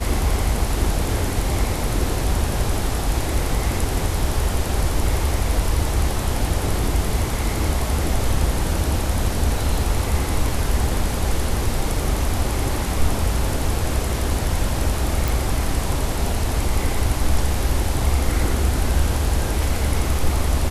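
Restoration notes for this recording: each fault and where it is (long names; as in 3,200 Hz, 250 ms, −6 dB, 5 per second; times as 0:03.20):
0:15.28: click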